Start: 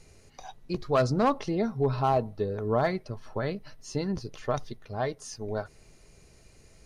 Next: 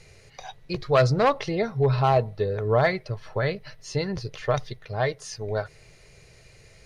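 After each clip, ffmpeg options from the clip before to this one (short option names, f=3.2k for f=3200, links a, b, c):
-af "equalizer=f=125:t=o:w=1:g=9,equalizer=f=250:t=o:w=1:g=-8,equalizer=f=500:t=o:w=1:g=7,equalizer=f=2k:t=o:w=1:g=9,equalizer=f=4k:t=o:w=1:g=6"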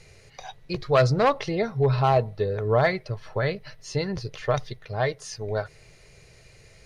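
-af anull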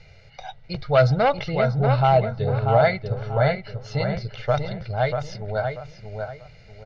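-filter_complex "[0:a]lowpass=f=4.7k:w=0.5412,lowpass=f=4.7k:w=1.3066,aecho=1:1:1.4:0.63,asplit=2[a][b];[b]adelay=638,lowpass=f=2.4k:p=1,volume=-5dB,asplit=2[c][d];[d]adelay=638,lowpass=f=2.4k:p=1,volume=0.32,asplit=2[e][f];[f]adelay=638,lowpass=f=2.4k:p=1,volume=0.32,asplit=2[g][h];[h]adelay=638,lowpass=f=2.4k:p=1,volume=0.32[i];[c][e][g][i]amix=inputs=4:normalize=0[j];[a][j]amix=inputs=2:normalize=0"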